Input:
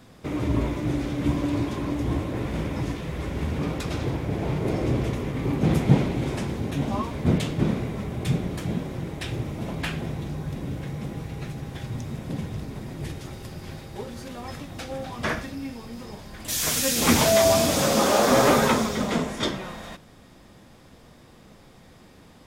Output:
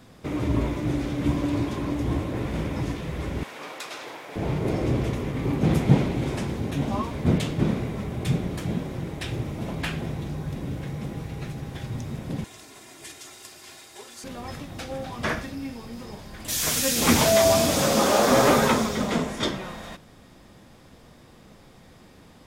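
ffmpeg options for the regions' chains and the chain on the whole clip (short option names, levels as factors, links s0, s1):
-filter_complex "[0:a]asettb=1/sr,asplit=3[s0][s1][s2];[s0]atrim=end=3.434[s3];[s1]atrim=start=3.43:end=4.36,asetpts=PTS-STARTPTS,afade=t=in:d=0.004:c=qsin,afade=t=out:st=0.926:d=0.004:c=qsin,highpass=760,asplit=2[s4][s5];[s5]adelay=34,volume=0.266[s6];[s4][s6]amix=inputs=2:normalize=0,atrim=end_sample=41013[s7];[s2]atrim=start=4.356[s8];[s3][s7]acrossfade=d=0.004:c1=hsin:c2=qsin[s9];[s9][s8]acrossfade=d=0.004:c1=qsin:c2=hsin,asettb=1/sr,asplit=3[s10][s11][s12];[s10]atrim=end=12.444[s13];[s11]atrim=start=12.44:end=14.24,asetpts=PTS-STARTPTS,afade=t=in:d=0.004:c=qsin,afade=t=out:st=1.796:d=0.004:c=qsin,highpass=f=1500:p=1,equalizer=f=7800:t=o:w=0.87:g=8,aecho=1:1:2.9:0.51,atrim=end_sample=79380[s14];[s12]atrim=start=14.236[s15];[s13][s14]acrossfade=d=0.004:c1=hsin:c2=qsin[s16];[s16][s15]acrossfade=d=0.004:c1=qsin:c2=hsin"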